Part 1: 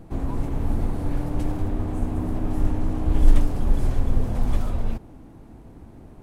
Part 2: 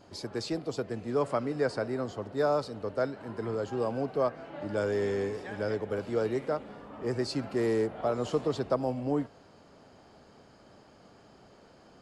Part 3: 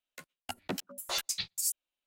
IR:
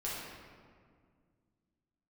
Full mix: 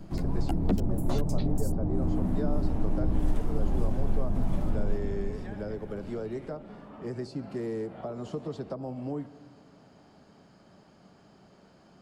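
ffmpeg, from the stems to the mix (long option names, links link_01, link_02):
-filter_complex "[0:a]volume=-8dB,asplit=2[link_01][link_02];[link_02]volume=-3dB[link_03];[1:a]acompressor=threshold=-31dB:ratio=2,volume=-3dB,asplit=2[link_04][link_05];[link_05]volume=-18.5dB[link_06];[2:a]dynaudnorm=framelen=110:gausssize=3:maxgain=8.5dB,volume=1dB[link_07];[3:a]atrim=start_sample=2205[link_08];[link_03][link_06]amix=inputs=2:normalize=0[link_09];[link_09][link_08]afir=irnorm=-1:irlink=0[link_10];[link_01][link_04][link_07][link_10]amix=inputs=4:normalize=0,equalizer=frequency=180:width=2.3:gain=7.5,bandreject=frequency=490:width=13,acrossover=split=410|830[link_11][link_12][link_13];[link_11]acompressor=threshold=-21dB:ratio=4[link_14];[link_12]acompressor=threshold=-35dB:ratio=4[link_15];[link_13]acompressor=threshold=-51dB:ratio=4[link_16];[link_14][link_15][link_16]amix=inputs=3:normalize=0"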